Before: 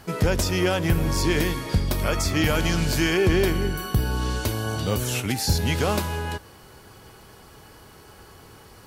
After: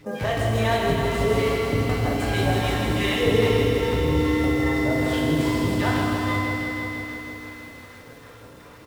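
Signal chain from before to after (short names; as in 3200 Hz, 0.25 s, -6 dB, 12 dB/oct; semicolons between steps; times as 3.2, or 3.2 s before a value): median filter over 9 samples; low shelf 180 Hz -10.5 dB; on a send: feedback echo 0.271 s, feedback 53%, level -18.5 dB; on the sum: phaser stages 2, 2.5 Hz, lowest notch 150–2300 Hz; high shelf 2200 Hz -7 dB; in parallel at -3 dB: compressor, threshold -38 dBFS, peak gain reduction 16 dB; on the sum: flange 1.1 Hz, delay 8.4 ms, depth 5.6 ms, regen -57%; pitch shift +3.5 st; FDN reverb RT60 1.9 s, low-frequency decay 1.6×, high-frequency decay 0.95×, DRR -1.5 dB; lo-fi delay 0.161 s, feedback 80%, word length 9-bit, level -5.5 dB; gain +3.5 dB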